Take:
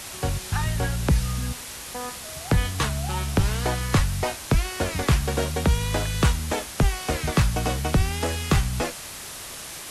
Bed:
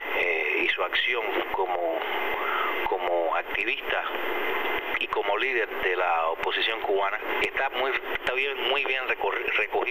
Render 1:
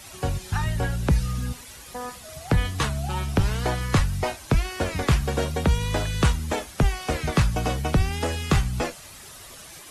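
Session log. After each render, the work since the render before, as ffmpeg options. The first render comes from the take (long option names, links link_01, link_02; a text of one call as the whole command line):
ffmpeg -i in.wav -af "afftdn=noise_reduction=10:noise_floor=-38" out.wav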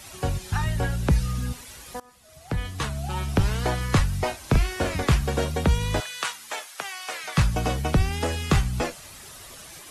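ffmpeg -i in.wav -filter_complex "[0:a]asettb=1/sr,asplit=3[link_01][link_02][link_03];[link_01]atrim=end=4.404[link_04];[link_02]atrim=start=4.4:end=4.96,asetpts=PTS-STARTPTS,afade=type=in:duration=0.004:curve=qsin,afade=type=out:start_time=0.556:duration=0.004:curve=qsin,asplit=2[link_05][link_06];[link_06]adelay=40,volume=-6.5dB[link_07];[link_05][link_07]amix=inputs=2:normalize=0,atrim=end_sample=24696[link_08];[link_03]atrim=start=4.956[link_09];[link_04][link_08]acrossfade=duration=0.004:curve1=hsin:curve2=qsin[link_10];[link_10][link_09]acrossfade=duration=0.004:curve1=qsin:curve2=hsin,asettb=1/sr,asplit=3[link_11][link_12][link_13];[link_11]atrim=end=6.004[link_14];[link_12]atrim=start=6:end=7.38,asetpts=PTS-STARTPTS,afade=type=in:duration=0.004:curve=qsin,afade=type=out:start_time=1.376:duration=0.004:curve=qsin,highpass=1000[link_15];[link_13]atrim=start=7.376[link_16];[link_14][link_15]acrossfade=duration=0.004:curve1=hsin:curve2=qsin[link_17];[link_17][link_16]acrossfade=duration=0.004:curve1=qsin:curve2=hsin,asplit=2[link_18][link_19];[link_18]atrim=end=2,asetpts=PTS-STARTPTS,afade=type=out:start_time=1.996:duration=0.004:curve=hsin:silence=0.0749894[link_20];[link_19]atrim=start=2,asetpts=PTS-STARTPTS,afade=type=in:duration=1.35:silence=0.0749894[link_21];[link_20][link_21]concat=n=2:v=0:a=1" out.wav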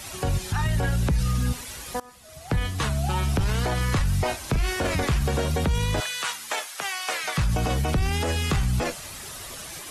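ffmpeg -i in.wav -af "acontrast=35,alimiter=limit=-16.5dB:level=0:latency=1:release=29" out.wav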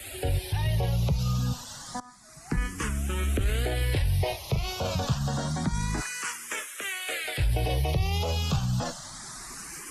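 ffmpeg -i in.wav -filter_complex "[0:a]acrossover=split=290|640|1900[link_01][link_02][link_03][link_04];[link_03]asoftclip=type=tanh:threshold=-33.5dB[link_05];[link_01][link_02][link_05][link_04]amix=inputs=4:normalize=0,asplit=2[link_06][link_07];[link_07]afreqshift=0.28[link_08];[link_06][link_08]amix=inputs=2:normalize=1" out.wav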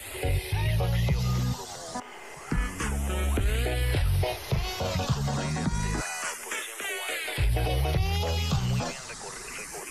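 ffmpeg -i in.wav -i bed.wav -filter_complex "[1:a]volume=-16dB[link_01];[0:a][link_01]amix=inputs=2:normalize=0" out.wav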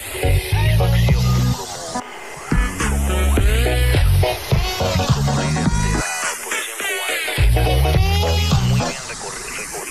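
ffmpeg -i in.wav -af "volume=10.5dB" out.wav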